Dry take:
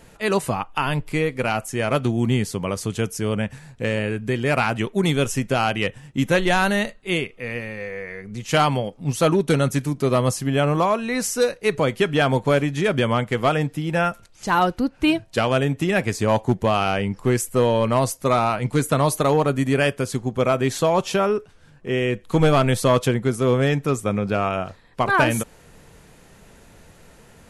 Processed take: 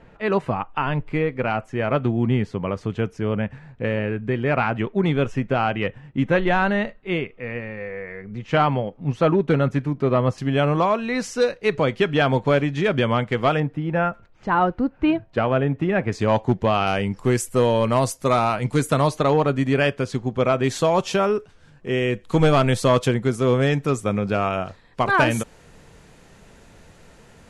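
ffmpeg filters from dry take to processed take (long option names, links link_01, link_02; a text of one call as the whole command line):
ffmpeg -i in.wav -af "asetnsamples=nb_out_samples=441:pad=0,asendcmd='10.38 lowpass f 4500;13.6 lowpass f 1800;16.12 lowpass f 4300;16.87 lowpass f 9900;19.08 lowpass f 4800;20.64 lowpass f 8400',lowpass=2200" out.wav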